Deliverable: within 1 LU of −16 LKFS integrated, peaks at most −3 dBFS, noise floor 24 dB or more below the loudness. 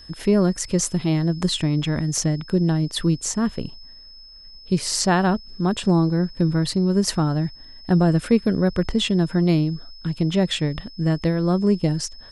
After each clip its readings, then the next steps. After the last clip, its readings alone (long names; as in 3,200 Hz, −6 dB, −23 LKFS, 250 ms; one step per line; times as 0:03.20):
interfering tone 5,200 Hz; level of the tone −43 dBFS; integrated loudness −21.5 LKFS; sample peak −5.5 dBFS; target loudness −16.0 LKFS
→ notch filter 5,200 Hz, Q 30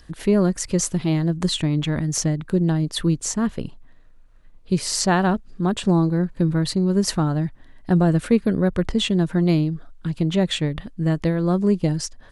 interfering tone none found; integrated loudness −21.5 LKFS; sample peak −5.5 dBFS; target loudness −16.0 LKFS
→ level +5.5 dB
brickwall limiter −3 dBFS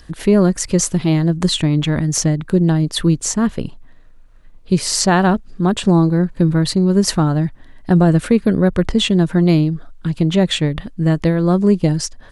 integrated loudness −16.0 LKFS; sample peak −3.0 dBFS; background noise floor −42 dBFS